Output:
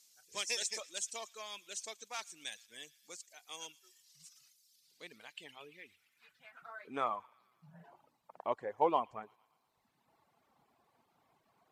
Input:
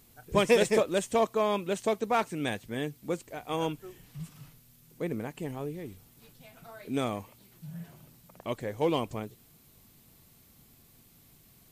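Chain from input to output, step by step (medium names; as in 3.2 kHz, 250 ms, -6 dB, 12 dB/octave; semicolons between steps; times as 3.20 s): band-pass sweep 5.9 kHz -> 880 Hz, 4.58–7.42 s; feedback echo behind a high-pass 115 ms, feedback 61%, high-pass 1.8 kHz, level -11 dB; reverb removal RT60 1.3 s; trim +6 dB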